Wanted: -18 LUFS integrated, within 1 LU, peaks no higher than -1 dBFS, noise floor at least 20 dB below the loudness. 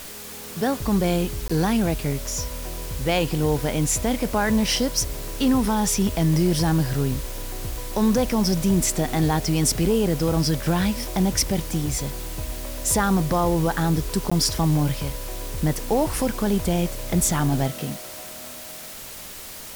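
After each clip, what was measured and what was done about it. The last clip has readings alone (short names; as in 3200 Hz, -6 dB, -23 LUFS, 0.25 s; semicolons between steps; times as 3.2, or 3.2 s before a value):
dropouts 2; longest dropout 15 ms; noise floor -38 dBFS; noise floor target -43 dBFS; loudness -23.0 LUFS; peak -8.0 dBFS; loudness target -18.0 LUFS
-> interpolate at 1.48/14.3, 15 ms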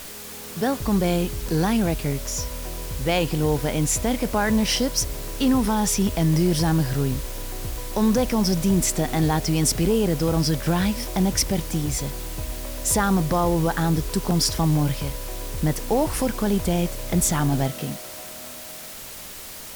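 dropouts 0; noise floor -38 dBFS; noise floor target -43 dBFS
-> denoiser 6 dB, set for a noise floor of -38 dBFS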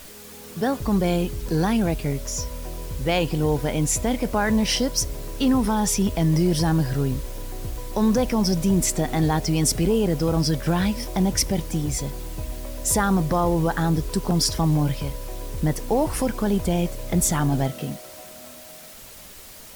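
noise floor -43 dBFS; loudness -23.0 LUFS; peak -8.0 dBFS; loudness target -18.0 LUFS
-> gain +5 dB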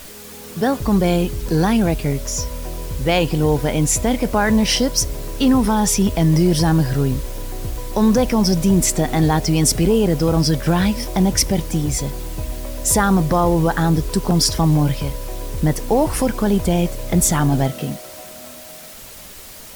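loudness -18.0 LUFS; peak -3.0 dBFS; noise floor -38 dBFS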